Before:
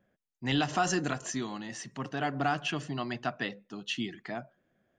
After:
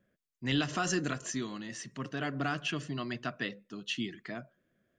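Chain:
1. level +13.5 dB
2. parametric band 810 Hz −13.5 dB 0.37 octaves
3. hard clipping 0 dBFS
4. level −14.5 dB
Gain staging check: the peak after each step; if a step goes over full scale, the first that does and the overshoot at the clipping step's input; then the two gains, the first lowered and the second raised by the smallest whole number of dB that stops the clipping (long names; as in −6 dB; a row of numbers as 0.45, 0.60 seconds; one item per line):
−2.5, −3.0, −3.0, −17.5 dBFS
no step passes full scale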